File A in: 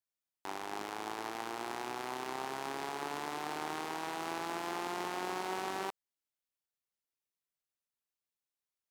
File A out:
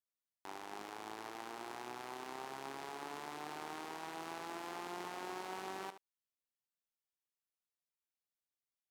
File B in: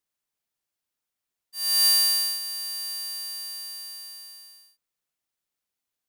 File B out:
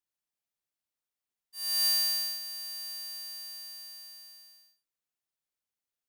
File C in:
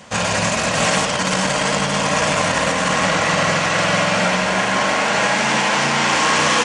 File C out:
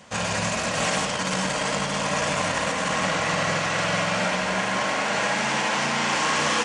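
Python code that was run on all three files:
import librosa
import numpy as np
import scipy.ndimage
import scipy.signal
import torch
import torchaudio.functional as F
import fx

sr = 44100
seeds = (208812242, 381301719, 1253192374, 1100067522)

y = x + 10.0 ** (-12.0 / 20.0) * np.pad(x, (int(74 * sr / 1000.0), 0))[:len(x)]
y = F.gain(torch.from_numpy(y), -7.0).numpy()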